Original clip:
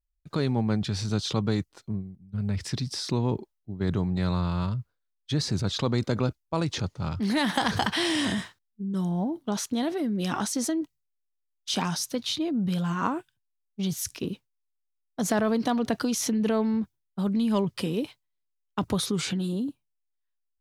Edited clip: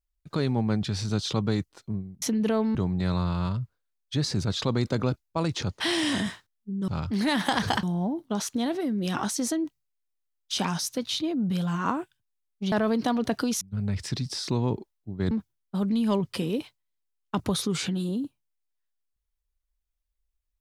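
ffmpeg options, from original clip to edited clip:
-filter_complex "[0:a]asplit=9[a][b][c][d][e][f][g][h][i];[a]atrim=end=2.222[j];[b]atrim=start=16.218:end=16.752[k];[c]atrim=start=3.918:end=6.972[l];[d]atrim=start=7.918:end=9.002[m];[e]atrim=start=6.968:end=7.922[n];[f]atrim=start=8.998:end=13.892[o];[g]atrim=start=15.328:end=16.222[p];[h]atrim=start=2.218:end=3.922[q];[i]atrim=start=16.748[r];[j][k]acrossfade=d=0.004:c1=hsin:c2=hsin[s];[s][l]acrossfade=d=0.004:c1=hsin:c2=hsin[t];[t][m]acrossfade=d=0.004:c1=hsin:c2=hsin[u];[u][n]acrossfade=d=0.004:c1=hsin:c2=hsin[v];[v][o]acrossfade=d=0.004:c1=hsin:c2=hsin[w];[w][p]acrossfade=d=0.004:c1=hsin:c2=hsin[x];[x][q]acrossfade=d=0.004:c1=hsin:c2=hsin[y];[y][r]acrossfade=d=0.004:c1=hsin:c2=hsin"

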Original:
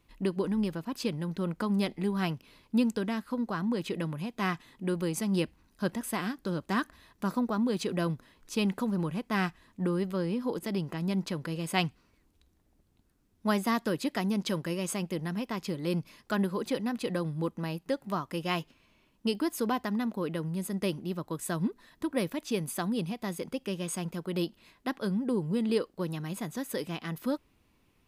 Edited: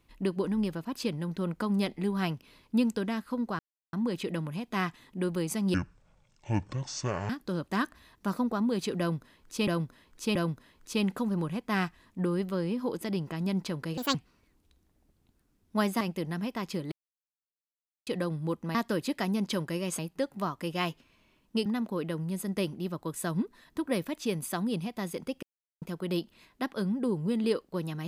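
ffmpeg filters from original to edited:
-filter_complex "[0:a]asplit=16[a][b][c][d][e][f][g][h][i][j][k][l][m][n][o][p];[a]atrim=end=3.59,asetpts=PTS-STARTPTS,afade=t=out:st=3.586:d=0.004:c=hsin,apad=pad_dur=0.34[q];[b]atrim=start=3.59:end=5.404,asetpts=PTS-STARTPTS,afade=t=in:d=0.004:c=hsin[r];[c]atrim=start=5.4:end=6.27,asetpts=PTS-STARTPTS,asetrate=24696,aresample=44100,atrim=end_sample=68512,asetpts=PTS-STARTPTS[s];[d]atrim=start=6.266:end=8.652[t];[e]atrim=start=7.968:end=8.652[u];[f]atrim=start=7.968:end=11.594[v];[g]atrim=start=11.59:end=11.85,asetpts=PTS-STARTPTS,asetrate=66150,aresample=44100[w];[h]atrim=start=11.846:end=13.712[x];[i]atrim=start=14.948:end=15.86,asetpts=PTS-STARTPTS,afade=t=out:st=0.908:d=0.004:c=hsin[y];[j]atrim=start=15.86:end=17.01,asetpts=PTS-STARTPTS,volume=0[z];[k]atrim=start=17.01:end=17.692,asetpts=PTS-STARTPTS,afade=t=in:d=0.004:c=hsin[aa];[l]atrim=start=13.708:end=14.952[ab];[m]atrim=start=17.688:end=19.362[ac];[n]atrim=start=19.908:end=23.68,asetpts=PTS-STARTPTS,afade=t=out:st=3.768:d=0.004:c=hsin[ad];[o]atrim=start=23.68:end=24.07,asetpts=PTS-STARTPTS,volume=0[ae];[p]atrim=start=24.07,asetpts=PTS-STARTPTS,afade=t=in:d=0.004:c=hsin[af];[q][r]concat=n=2:v=0:a=1[ag];[ag][s]acrossfade=d=0.004:c1=hsin:c2=hsin[ah];[ah][t]acrossfade=d=0.004:c1=hsin:c2=hsin[ai];[ai][u]acrossfade=d=0.004:c1=hsin:c2=hsin[aj];[aj][v]acrossfade=d=0.004:c1=hsin:c2=hsin[ak];[ak][w]acrossfade=d=0.004:c1=hsin:c2=hsin[al];[al][x]acrossfade=d=0.004:c1=hsin:c2=hsin[am];[y][z][aa]concat=n=3:v=0:a=1[an];[am][an]acrossfade=d=0.004:c1=hsin:c2=hsin[ao];[ao][ab]acrossfade=d=0.004:c1=hsin:c2=hsin[ap];[ap][ac]acrossfade=d=0.004:c1=hsin:c2=hsin[aq];[ad][ae][af]concat=n=3:v=0:a=1[ar];[aq][ar]acrossfade=d=0.004:c1=hsin:c2=hsin"

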